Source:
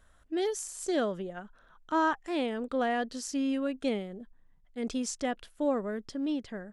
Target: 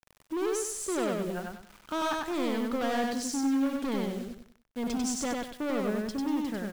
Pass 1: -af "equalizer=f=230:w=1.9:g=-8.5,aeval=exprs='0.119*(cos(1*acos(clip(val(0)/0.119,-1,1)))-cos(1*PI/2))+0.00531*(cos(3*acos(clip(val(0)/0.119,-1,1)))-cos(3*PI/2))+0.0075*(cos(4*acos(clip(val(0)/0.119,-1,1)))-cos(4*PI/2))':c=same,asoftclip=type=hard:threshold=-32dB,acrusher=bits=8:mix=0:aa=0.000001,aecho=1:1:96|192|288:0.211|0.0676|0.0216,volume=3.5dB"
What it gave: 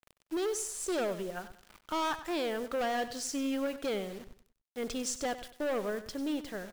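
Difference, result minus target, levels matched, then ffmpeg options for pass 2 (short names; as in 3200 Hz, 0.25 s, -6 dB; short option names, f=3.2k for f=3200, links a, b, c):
echo-to-direct -11.5 dB; 250 Hz band -3.5 dB
-af "equalizer=f=230:w=1.9:g=3,aeval=exprs='0.119*(cos(1*acos(clip(val(0)/0.119,-1,1)))-cos(1*PI/2))+0.00531*(cos(3*acos(clip(val(0)/0.119,-1,1)))-cos(3*PI/2))+0.0075*(cos(4*acos(clip(val(0)/0.119,-1,1)))-cos(4*PI/2))':c=same,asoftclip=type=hard:threshold=-32dB,acrusher=bits=8:mix=0:aa=0.000001,aecho=1:1:96|192|288|384:0.794|0.254|0.0813|0.026,volume=3.5dB"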